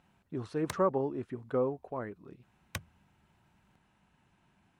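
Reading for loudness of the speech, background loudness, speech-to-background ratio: −34.0 LKFS, −45.5 LKFS, 11.5 dB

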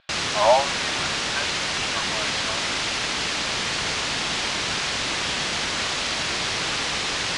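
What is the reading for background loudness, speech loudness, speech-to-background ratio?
−23.5 LKFS, −27.0 LKFS, −3.5 dB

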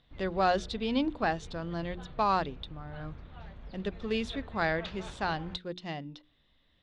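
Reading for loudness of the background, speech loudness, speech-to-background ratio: −48.5 LKFS, −32.5 LKFS, 16.0 dB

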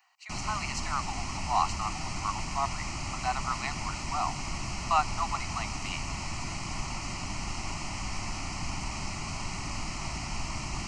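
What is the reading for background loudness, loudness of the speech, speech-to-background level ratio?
−36.0 LKFS, −34.0 LKFS, 2.0 dB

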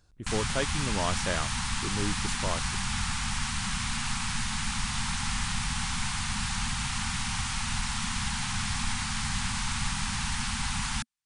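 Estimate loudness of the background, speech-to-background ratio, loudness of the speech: −30.5 LKFS, −4.0 dB, −34.5 LKFS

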